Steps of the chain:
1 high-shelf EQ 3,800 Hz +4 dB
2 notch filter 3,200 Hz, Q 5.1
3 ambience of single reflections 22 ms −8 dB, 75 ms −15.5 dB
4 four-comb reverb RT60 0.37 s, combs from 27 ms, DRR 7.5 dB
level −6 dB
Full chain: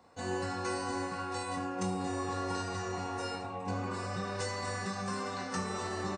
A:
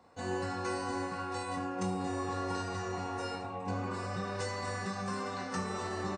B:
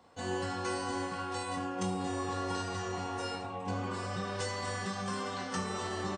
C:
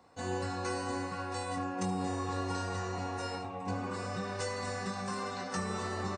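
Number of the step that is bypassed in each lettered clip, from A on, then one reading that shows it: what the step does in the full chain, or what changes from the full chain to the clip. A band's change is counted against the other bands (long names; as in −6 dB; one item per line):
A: 1, 8 kHz band −3.0 dB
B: 2, 4 kHz band +1.5 dB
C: 4, echo-to-direct ratio −4.0 dB to −7.5 dB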